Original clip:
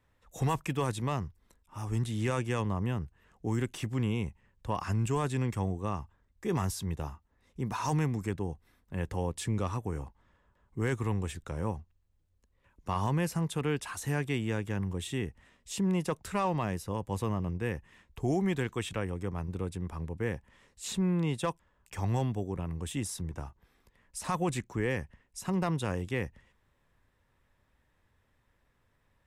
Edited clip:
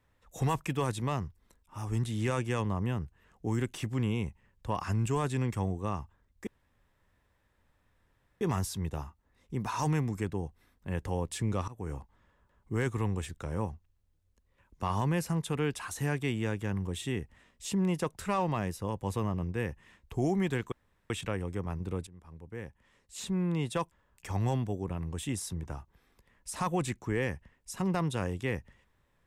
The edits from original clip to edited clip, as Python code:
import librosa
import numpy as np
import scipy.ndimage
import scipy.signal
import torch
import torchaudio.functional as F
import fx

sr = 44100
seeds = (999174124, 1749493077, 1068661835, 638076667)

y = fx.edit(x, sr, fx.insert_room_tone(at_s=6.47, length_s=1.94),
    fx.fade_in_from(start_s=9.74, length_s=0.25, floor_db=-19.5),
    fx.insert_room_tone(at_s=18.78, length_s=0.38),
    fx.fade_in_from(start_s=19.75, length_s=1.73, floor_db=-19.0), tone=tone)